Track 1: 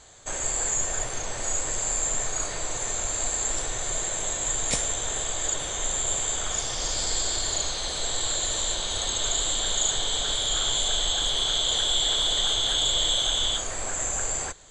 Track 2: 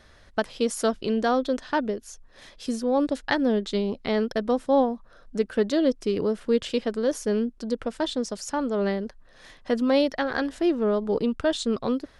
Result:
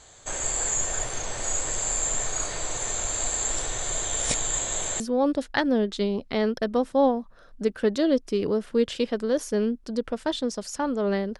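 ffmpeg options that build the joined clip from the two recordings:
-filter_complex "[0:a]apad=whole_dur=11.39,atrim=end=11.39,asplit=2[s0][s1];[s0]atrim=end=4.052[s2];[s1]atrim=start=4.048:end=5.002,asetpts=PTS-STARTPTS,areverse[s3];[1:a]atrim=start=2.738:end=9.13[s4];[s2][s3]acrossfade=d=0.004:c1=hsin:c2=hsin[s5];[s5][s4]acrossfade=d=0.004:c1=hsin:c2=hsin"

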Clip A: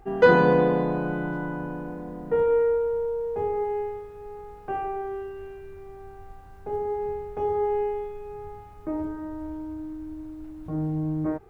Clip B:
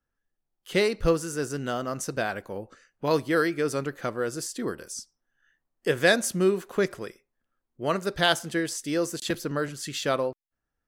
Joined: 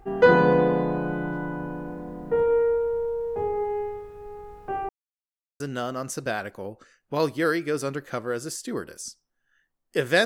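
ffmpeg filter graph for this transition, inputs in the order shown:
-filter_complex "[0:a]apad=whole_dur=10.25,atrim=end=10.25,asplit=2[s0][s1];[s0]atrim=end=4.89,asetpts=PTS-STARTPTS,afade=t=out:st=4.886:d=0.004:c=hsin[s2];[s1]atrim=start=4.89:end=5.6,asetpts=PTS-STARTPTS,volume=0[s3];[1:a]atrim=start=1.51:end=6.16,asetpts=PTS-STARTPTS,afade=t=in:d=0.004:c=hsin[s4];[s2][s3][s4]concat=n=3:v=0:a=1"

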